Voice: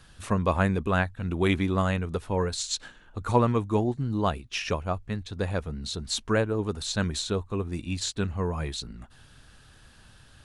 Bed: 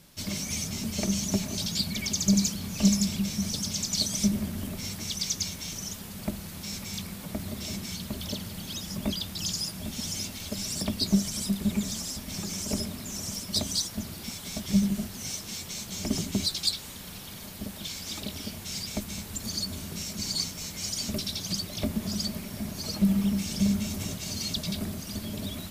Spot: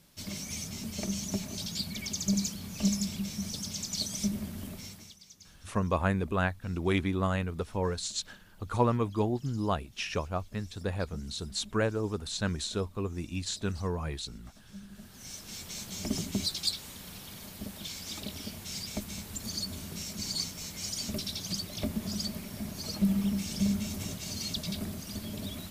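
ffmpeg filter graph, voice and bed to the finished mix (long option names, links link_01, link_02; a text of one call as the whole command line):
ffmpeg -i stem1.wav -i stem2.wav -filter_complex "[0:a]adelay=5450,volume=-4dB[link_01];[1:a]volume=14.5dB,afade=type=out:start_time=4.7:duration=0.47:silence=0.125893,afade=type=in:start_time=14.89:duration=0.88:silence=0.0944061[link_02];[link_01][link_02]amix=inputs=2:normalize=0" out.wav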